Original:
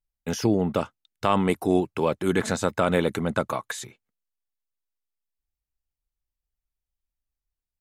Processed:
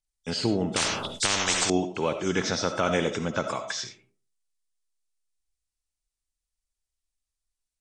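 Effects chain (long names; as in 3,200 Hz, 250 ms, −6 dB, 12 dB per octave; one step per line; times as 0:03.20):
hearing-aid frequency compression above 3,100 Hz 1.5 to 1
parametric band 5,900 Hz +9.5 dB 2.4 octaves
comb and all-pass reverb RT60 0.4 s, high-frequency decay 0.45×, pre-delay 30 ms, DRR 7.5 dB
0:00.76–0:01.70: every bin compressed towards the loudest bin 10 to 1
level −4 dB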